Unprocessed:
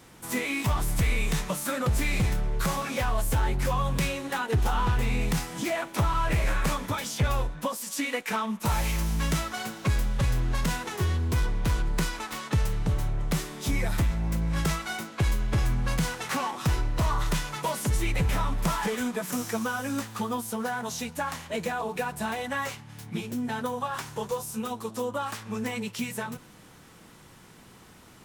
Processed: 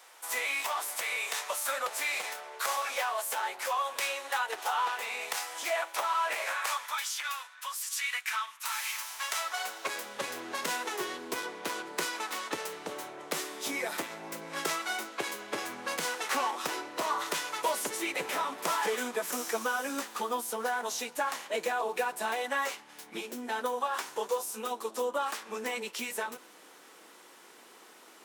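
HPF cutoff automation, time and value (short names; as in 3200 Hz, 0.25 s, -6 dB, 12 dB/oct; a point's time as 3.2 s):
HPF 24 dB/oct
6.43 s 590 Hz
7.16 s 1200 Hz
8.8 s 1200 Hz
10.18 s 330 Hz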